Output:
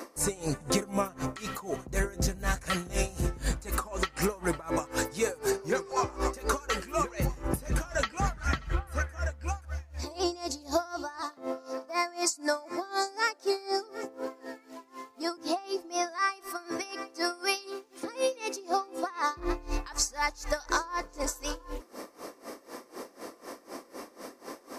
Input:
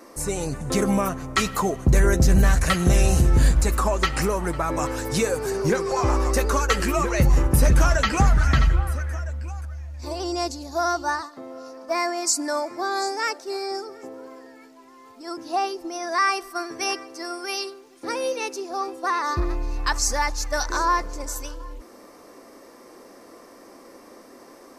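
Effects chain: bass shelf 130 Hz -9.5 dB; compression, threshold -31 dBFS, peak gain reduction 14 dB; logarithmic tremolo 4 Hz, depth 21 dB; trim +8.5 dB

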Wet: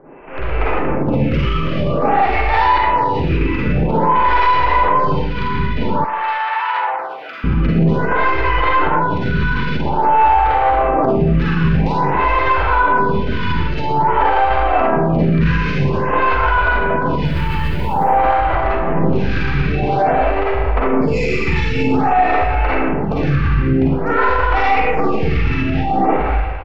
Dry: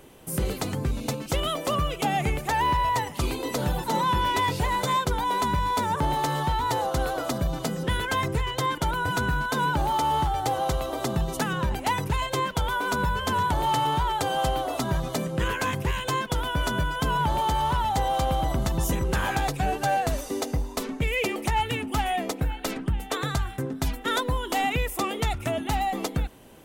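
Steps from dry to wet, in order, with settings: tracing distortion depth 0.11 ms; elliptic low-pass 2.6 kHz, stop band 40 dB; 17.25–18.28 s: companded quantiser 8-bit; sine folder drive 4 dB, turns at -15.5 dBFS; Schroeder reverb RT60 1.3 s, DRR -7.5 dB; peak limiter -9.5 dBFS, peak gain reduction 10 dB; 6.04–7.44 s: high-pass 1.2 kHz 12 dB/octave; feedback delay 165 ms, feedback 41%, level -19 dB; level rider gain up to 6.5 dB; lamp-driven phase shifter 0.5 Hz

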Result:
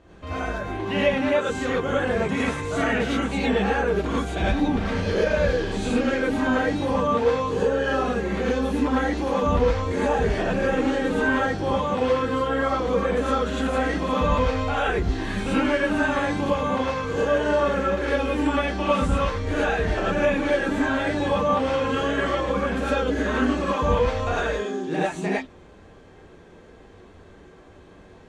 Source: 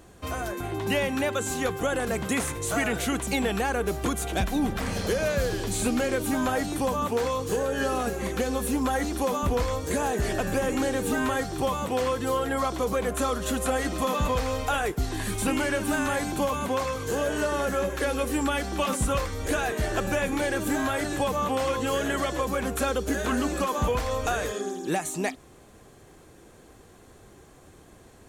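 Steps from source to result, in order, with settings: low-pass 3.5 kHz 12 dB/octave; gated-style reverb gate 130 ms rising, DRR -7.5 dB; trim -4 dB

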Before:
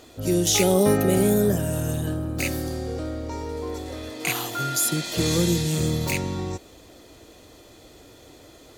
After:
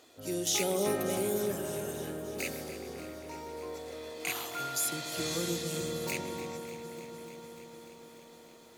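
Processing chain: high-pass 420 Hz 6 dB/octave; feedback echo behind a low-pass 133 ms, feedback 85%, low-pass 1.7 kHz, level -10 dB; bit-crushed delay 296 ms, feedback 80%, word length 8-bit, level -15 dB; trim -8.5 dB

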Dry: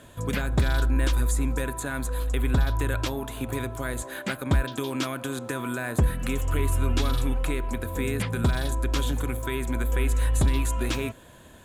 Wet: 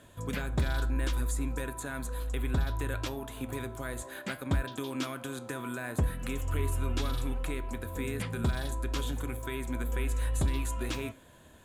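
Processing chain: flange 0.64 Hz, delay 9.9 ms, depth 4.2 ms, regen +80%; trim -2 dB

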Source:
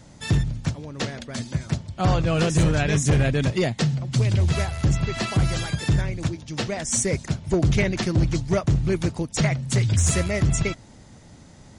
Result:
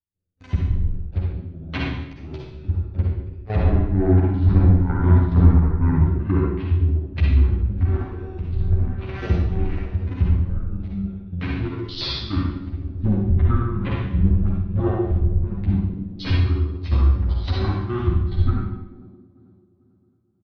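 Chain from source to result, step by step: local Wiener filter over 25 samples; gate -38 dBFS, range -38 dB; rotary cabinet horn 6.7 Hz, later 0.75 Hz, at 7.79 s; comb 6.3 ms, depth 84%; on a send: feedback echo behind a band-pass 128 ms, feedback 64%, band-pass 520 Hz, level -12 dB; on the sum: trance gate ".xxx.xx.xx" 186 bpm -12 dB; low-pass that closes with the level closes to 2.1 kHz, closed at -18 dBFS; Schroeder reverb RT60 0.45 s, combs from 26 ms, DRR -2.5 dB; speed mistake 78 rpm record played at 45 rpm

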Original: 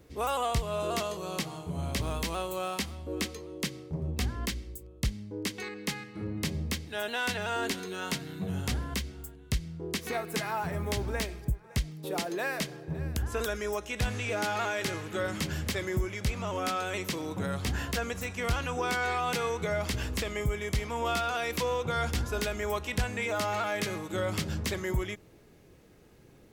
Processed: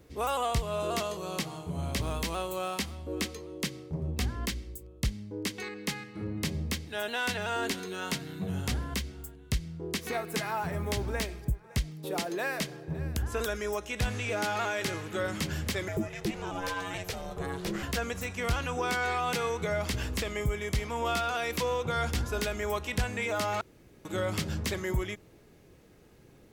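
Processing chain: 15.88–17.83 s: ring modulator 270 Hz; 23.61–24.05 s: room tone

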